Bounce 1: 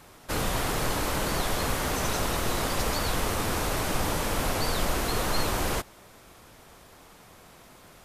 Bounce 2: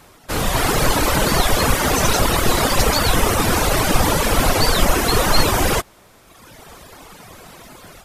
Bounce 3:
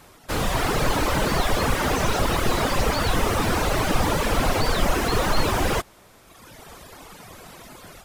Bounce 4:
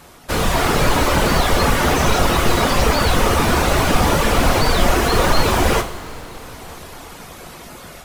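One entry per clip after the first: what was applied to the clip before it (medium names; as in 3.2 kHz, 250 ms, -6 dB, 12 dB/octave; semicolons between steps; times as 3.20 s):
reverb removal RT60 1.5 s; level rider gain up to 10 dB; trim +4.5 dB
in parallel at -1 dB: peak limiter -12.5 dBFS, peak gain reduction 11 dB; on the sum: slew-rate limiter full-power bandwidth 420 Hz; trim -8 dB
two-slope reverb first 0.4 s, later 4.9 s, from -18 dB, DRR 4 dB; trim +5 dB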